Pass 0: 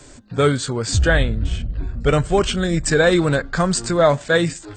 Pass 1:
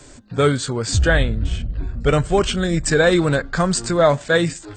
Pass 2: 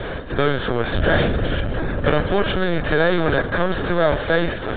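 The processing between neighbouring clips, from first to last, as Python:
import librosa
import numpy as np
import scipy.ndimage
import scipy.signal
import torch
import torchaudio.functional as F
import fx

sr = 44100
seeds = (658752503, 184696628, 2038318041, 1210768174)

y1 = x
y2 = fx.bin_compress(y1, sr, power=0.4)
y2 = fx.lpc_vocoder(y2, sr, seeds[0], excitation='pitch_kept', order=16)
y2 = F.gain(torch.from_numpy(y2), -6.5).numpy()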